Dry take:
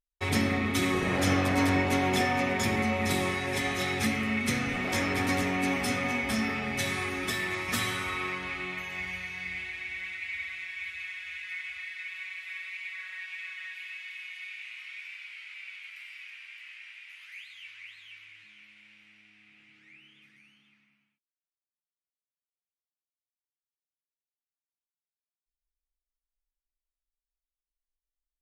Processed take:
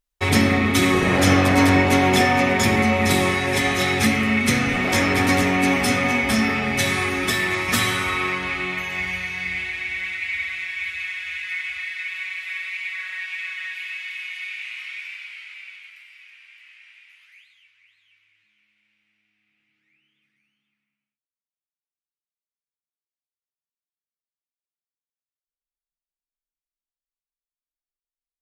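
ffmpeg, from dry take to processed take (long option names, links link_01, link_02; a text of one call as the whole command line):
ffmpeg -i in.wav -af "volume=9.5dB,afade=type=out:start_time=14.82:duration=1.23:silence=0.266073,afade=type=out:start_time=16.98:duration=0.72:silence=0.298538" out.wav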